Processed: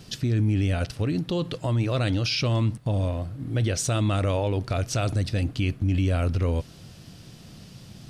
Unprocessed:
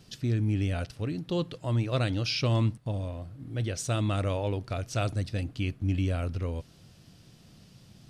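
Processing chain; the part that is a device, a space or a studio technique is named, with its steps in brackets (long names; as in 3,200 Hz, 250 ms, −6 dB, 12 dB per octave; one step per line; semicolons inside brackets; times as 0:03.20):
clipper into limiter (hard clipping −18.5 dBFS, distortion −39 dB; brickwall limiter −26 dBFS, peak gain reduction 7.5 dB)
level +9 dB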